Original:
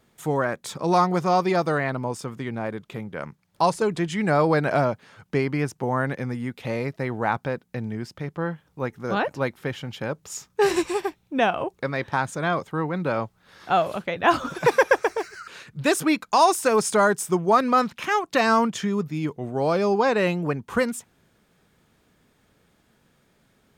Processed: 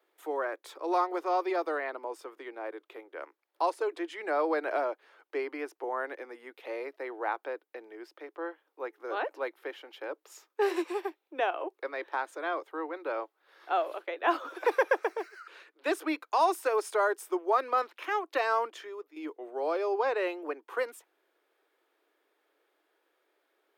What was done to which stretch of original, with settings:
0:15.43–0:16.06: high-shelf EQ 12,000 Hz −7.5 dB
0:18.67–0:19.16: fade out, to −10 dB
whole clip: Butterworth high-pass 310 Hz 72 dB per octave; parametric band 7,100 Hz −11 dB 1.3 octaves; level −7.5 dB

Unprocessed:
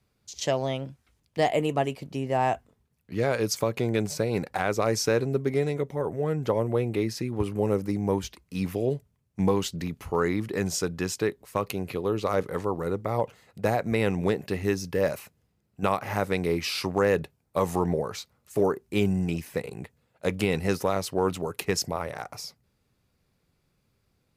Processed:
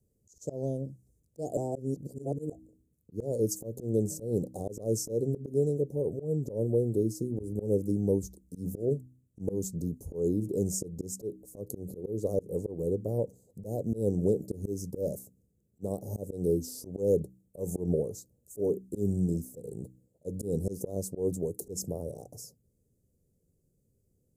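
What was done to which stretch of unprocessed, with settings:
0:01.57–0:02.52: reverse
whole clip: Chebyshev band-stop filter 500–7,100 Hz, order 3; hum removal 63.2 Hz, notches 5; volume swells 143 ms

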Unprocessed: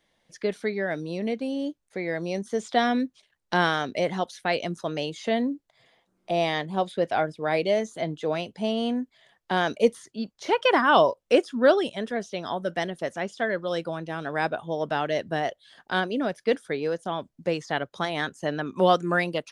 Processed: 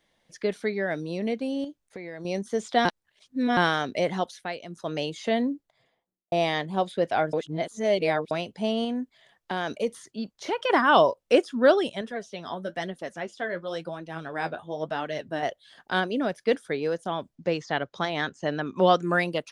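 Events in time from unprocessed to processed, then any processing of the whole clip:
0:01.64–0:02.25: downward compressor, threshold −34 dBFS
0:02.85–0:03.57: reverse
0:04.27–0:04.95: duck −11 dB, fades 0.28 s
0:05.45–0:06.32: fade out and dull
0:07.33–0:08.31: reverse
0:08.84–0:10.70: downward compressor 2 to 1, threshold −27 dBFS
0:12.01–0:15.43: flanger 1 Hz, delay 3.1 ms, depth 9.5 ms, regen +43%
0:17.35–0:19.02: low-pass filter 6,700 Hz 24 dB per octave

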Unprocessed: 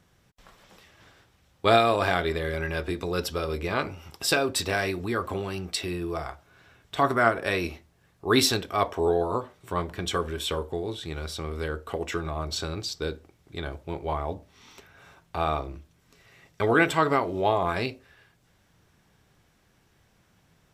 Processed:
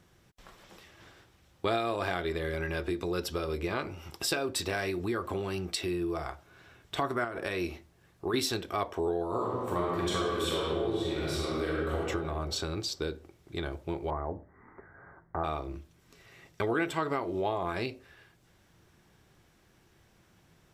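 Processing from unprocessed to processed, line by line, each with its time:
0:07.24–0:08.34: downward compressor 4 to 1, threshold −25 dBFS
0:09.30–0:11.95: thrown reverb, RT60 1.7 s, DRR −5.5 dB
0:14.10–0:15.44: Butterworth low-pass 2,000 Hz 96 dB per octave
whole clip: parametric band 350 Hz +6.5 dB 0.22 octaves; downward compressor 2.5 to 1, threshold −31 dBFS

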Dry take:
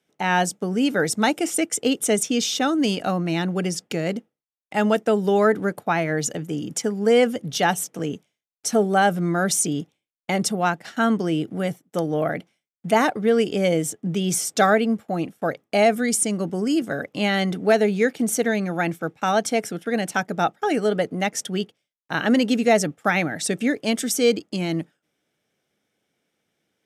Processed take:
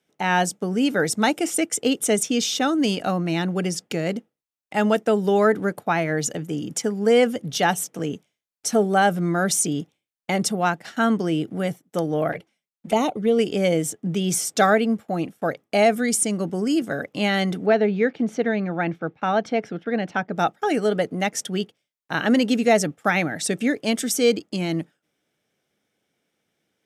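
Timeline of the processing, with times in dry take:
0:12.32–0:13.39: flanger swept by the level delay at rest 6.6 ms, full sweep at −18.5 dBFS
0:17.66–0:20.36: high-frequency loss of the air 240 metres

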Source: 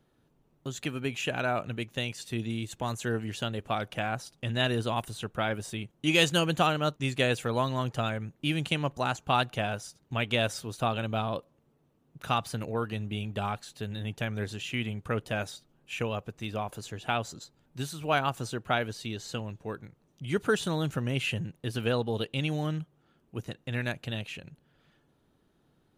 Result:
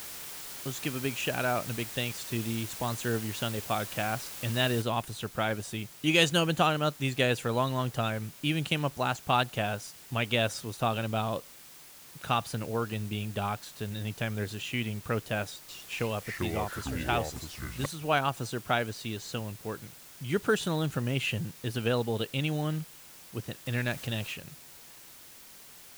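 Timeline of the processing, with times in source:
0:04.82: noise floor change −42 dB −51 dB
0:15.47–0:17.86: delay with pitch and tempo change per echo 215 ms, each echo −5 semitones, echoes 2
0:23.66–0:24.34: mu-law and A-law mismatch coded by mu

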